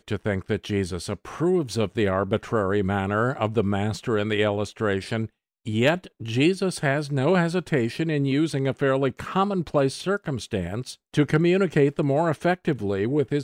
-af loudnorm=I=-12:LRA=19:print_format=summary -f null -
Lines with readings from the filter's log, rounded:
Input Integrated:    -24.2 LUFS
Input True Peak:      -8.5 dBTP
Input LRA:             1.5 LU
Input Threshold:     -34.3 LUFS